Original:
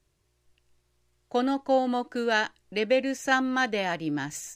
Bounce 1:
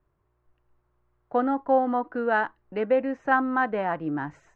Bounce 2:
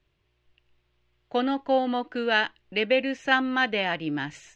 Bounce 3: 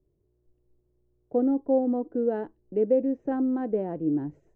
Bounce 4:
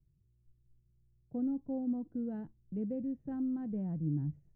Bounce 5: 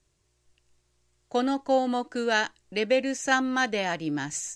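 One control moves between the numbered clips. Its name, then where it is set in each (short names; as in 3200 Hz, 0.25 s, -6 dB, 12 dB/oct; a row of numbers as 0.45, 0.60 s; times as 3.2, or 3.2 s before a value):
synth low-pass, frequency: 1200, 3000, 410, 160, 7900 Hz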